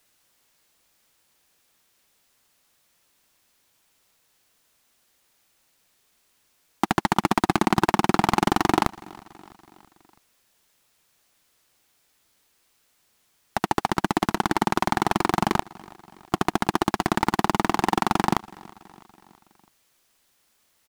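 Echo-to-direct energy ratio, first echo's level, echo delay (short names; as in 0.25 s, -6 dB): -21.5 dB, -23.0 dB, 0.328 s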